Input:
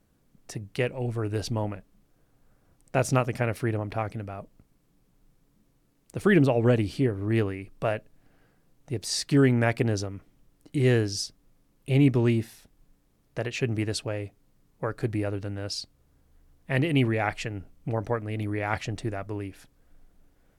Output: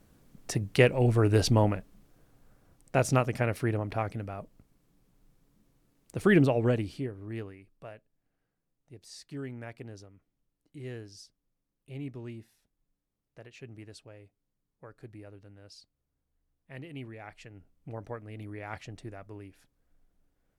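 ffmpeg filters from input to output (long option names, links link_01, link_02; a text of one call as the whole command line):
ffmpeg -i in.wav -af "volume=13.5dB,afade=type=out:start_time=1.52:duration=1.53:silence=0.421697,afade=type=out:start_time=6.36:duration=0.73:silence=0.316228,afade=type=out:start_time=7.09:duration=0.82:silence=0.421697,afade=type=in:start_time=17.26:duration=0.7:silence=0.421697" out.wav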